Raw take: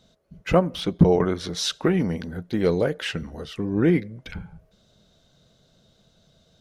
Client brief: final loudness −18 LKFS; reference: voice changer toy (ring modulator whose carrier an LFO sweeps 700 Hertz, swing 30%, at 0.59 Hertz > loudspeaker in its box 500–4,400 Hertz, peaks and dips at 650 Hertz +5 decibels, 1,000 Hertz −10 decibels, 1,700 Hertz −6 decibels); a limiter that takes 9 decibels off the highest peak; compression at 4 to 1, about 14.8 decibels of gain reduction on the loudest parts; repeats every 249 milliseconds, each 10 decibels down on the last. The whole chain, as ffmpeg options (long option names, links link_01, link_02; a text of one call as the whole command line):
ffmpeg -i in.wav -af "acompressor=threshold=-28dB:ratio=4,alimiter=level_in=1dB:limit=-24dB:level=0:latency=1,volume=-1dB,aecho=1:1:249|498|747|996:0.316|0.101|0.0324|0.0104,aeval=exprs='val(0)*sin(2*PI*700*n/s+700*0.3/0.59*sin(2*PI*0.59*n/s))':channel_layout=same,highpass=500,equalizer=frequency=650:width_type=q:width=4:gain=5,equalizer=frequency=1000:width_type=q:width=4:gain=-10,equalizer=frequency=1700:width_type=q:width=4:gain=-6,lowpass=frequency=4400:width=0.5412,lowpass=frequency=4400:width=1.3066,volume=22.5dB" out.wav